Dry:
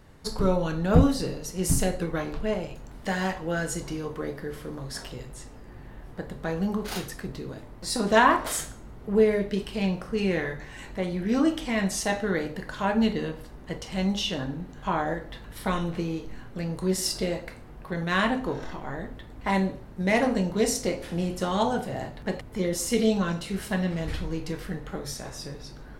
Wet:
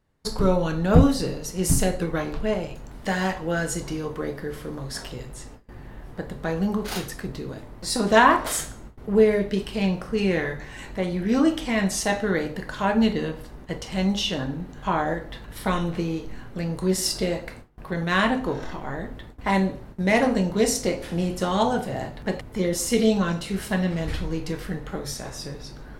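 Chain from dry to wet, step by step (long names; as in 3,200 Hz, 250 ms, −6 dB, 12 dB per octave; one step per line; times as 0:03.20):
noise gate with hold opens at −35 dBFS
level +3 dB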